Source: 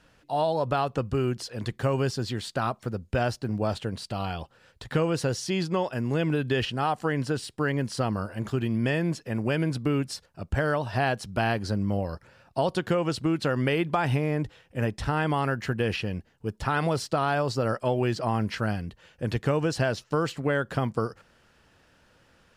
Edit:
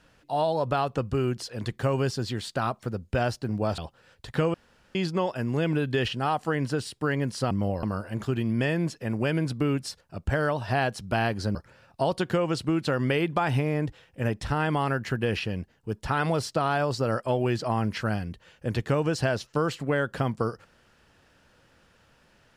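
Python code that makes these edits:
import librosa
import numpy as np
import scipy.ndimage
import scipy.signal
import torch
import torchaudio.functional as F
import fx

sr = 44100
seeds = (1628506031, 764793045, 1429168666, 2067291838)

y = fx.edit(x, sr, fx.cut(start_s=3.78, length_s=0.57),
    fx.room_tone_fill(start_s=5.11, length_s=0.41),
    fx.move(start_s=11.8, length_s=0.32, to_s=8.08), tone=tone)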